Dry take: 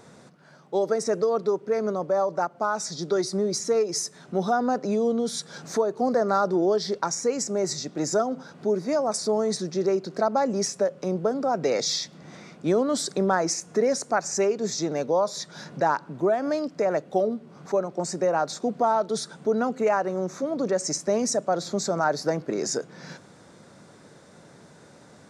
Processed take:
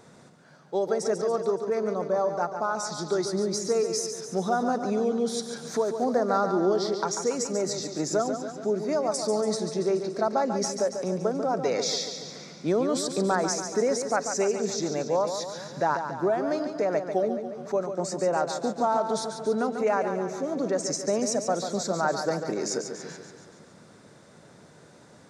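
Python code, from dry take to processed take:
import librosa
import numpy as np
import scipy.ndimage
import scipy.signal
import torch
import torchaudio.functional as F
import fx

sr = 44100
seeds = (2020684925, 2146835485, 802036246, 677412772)

y = fx.echo_feedback(x, sr, ms=142, feedback_pct=59, wet_db=-8)
y = y * 10.0 ** (-2.5 / 20.0)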